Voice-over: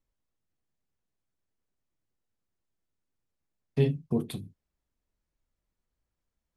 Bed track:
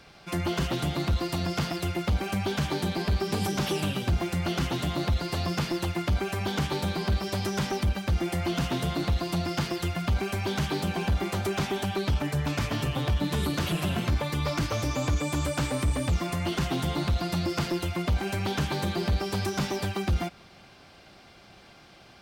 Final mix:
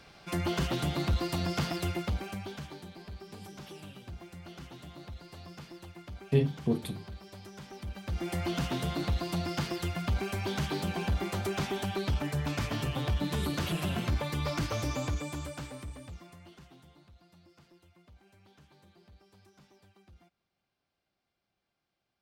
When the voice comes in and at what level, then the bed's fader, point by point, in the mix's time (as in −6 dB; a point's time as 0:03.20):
2.55 s, −0.5 dB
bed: 0:01.89 −2.5 dB
0:02.88 −18.5 dB
0:07.66 −18.5 dB
0:08.34 −4 dB
0:14.92 −4 dB
0:17.08 −32 dB